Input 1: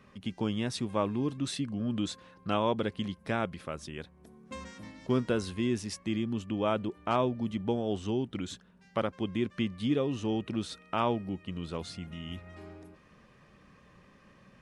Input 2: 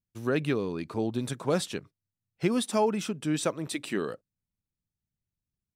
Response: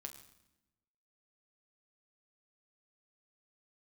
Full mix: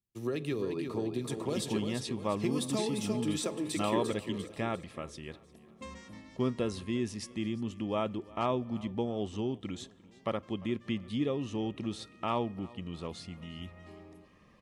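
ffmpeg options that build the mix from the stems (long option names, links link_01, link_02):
-filter_complex "[0:a]adelay=1300,volume=-4dB,asplit=3[link_01][link_02][link_03];[link_02]volume=-11.5dB[link_04];[link_03]volume=-21dB[link_05];[1:a]equalizer=frequency=370:width_type=o:width=0.77:gain=7.5,bandreject=frequency=85:width_type=h:width=4,bandreject=frequency=170:width_type=h:width=4,bandreject=frequency=255:width_type=h:width=4,bandreject=frequency=340:width_type=h:width=4,bandreject=frequency=425:width_type=h:width=4,bandreject=frequency=510:width_type=h:width=4,bandreject=frequency=595:width_type=h:width=4,bandreject=frequency=680:width_type=h:width=4,bandreject=frequency=765:width_type=h:width=4,bandreject=frequency=850:width_type=h:width=4,bandreject=frequency=935:width_type=h:width=4,bandreject=frequency=1020:width_type=h:width=4,bandreject=frequency=1105:width_type=h:width=4,acrossover=split=120|3000[link_06][link_07][link_08];[link_07]acompressor=threshold=-28dB:ratio=6[link_09];[link_06][link_09][link_08]amix=inputs=3:normalize=0,volume=-6dB,asplit=3[link_10][link_11][link_12];[link_11]volume=-3.5dB[link_13];[link_12]volume=-4.5dB[link_14];[2:a]atrim=start_sample=2205[link_15];[link_04][link_13]amix=inputs=2:normalize=0[link_16];[link_16][link_15]afir=irnorm=-1:irlink=0[link_17];[link_05][link_14]amix=inputs=2:normalize=0,aecho=0:1:348|696|1044|1392|1740|2088:1|0.44|0.194|0.0852|0.0375|0.0165[link_18];[link_01][link_10][link_17][link_18]amix=inputs=4:normalize=0,asuperstop=centerf=1500:order=8:qfactor=7.8"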